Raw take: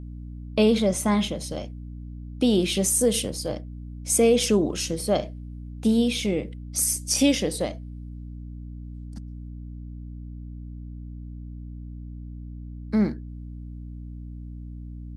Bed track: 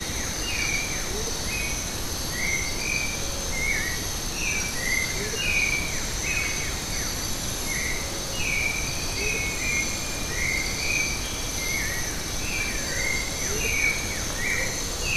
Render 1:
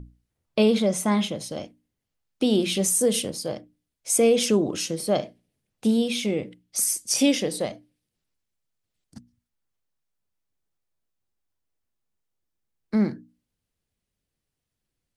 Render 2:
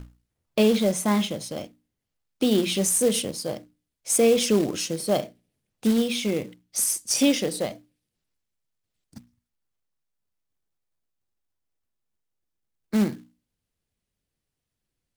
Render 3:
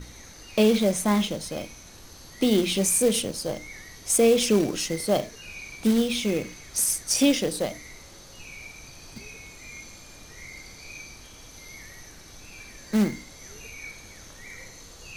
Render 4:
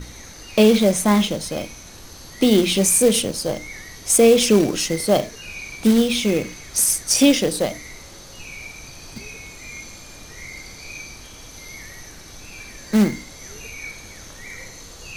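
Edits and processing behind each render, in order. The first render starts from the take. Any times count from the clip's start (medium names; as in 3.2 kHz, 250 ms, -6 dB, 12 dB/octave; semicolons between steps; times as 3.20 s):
hum notches 60/120/180/240/300 Hz
short-mantissa float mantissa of 2-bit
add bed track -17 dB
trim +6 dB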